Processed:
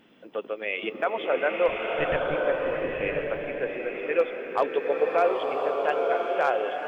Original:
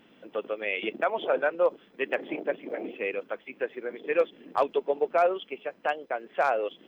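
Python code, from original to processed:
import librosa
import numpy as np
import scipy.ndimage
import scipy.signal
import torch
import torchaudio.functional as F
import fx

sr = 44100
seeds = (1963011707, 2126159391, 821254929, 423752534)

y = fx.lpc_monotone(x, sr, seeds[0], pitch_hz=150.0, order=10, at=(1.68, 2.35))
y = fx.rev_bloom(y, sr, seeds[1], attack_ms=1060, drr_db=0.0)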